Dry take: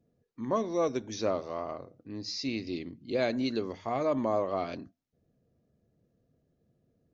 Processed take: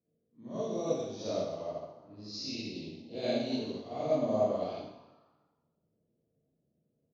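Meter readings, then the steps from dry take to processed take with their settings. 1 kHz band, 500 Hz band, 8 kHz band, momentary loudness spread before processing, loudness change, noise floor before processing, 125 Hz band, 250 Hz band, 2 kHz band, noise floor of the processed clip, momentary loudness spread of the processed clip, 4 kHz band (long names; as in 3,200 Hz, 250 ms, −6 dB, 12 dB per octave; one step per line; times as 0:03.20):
−6.0 dB, −1.5 dB, can't be measured, 11 LU, −2.5 dB, −76 dBFS, −1.5 dB, −3.5 dB, −8.0 dB, −79 dBFS, 14 LU, −1.5 dB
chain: spectrum smeared in time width 87 ms
dynamic equaliser 370 Hz, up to −7 dB, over −46 dBFS, Q 1.3
high-pass filter 130 Hz 6 dB per octave
flat-topped bell 1,400 Hz −12 dB
echo with shifted repeats 138 ms, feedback 63%, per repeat +140 Hz, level −23 dB
low-pass that shuts in the quiet parts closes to 2,300 Hz, open at −31.5 dBFS
four-comb reverb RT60 1.1 s, DRR −8 dB
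expander for the loud parts 1.5 to 1, over −41 dBFS
level −2 dB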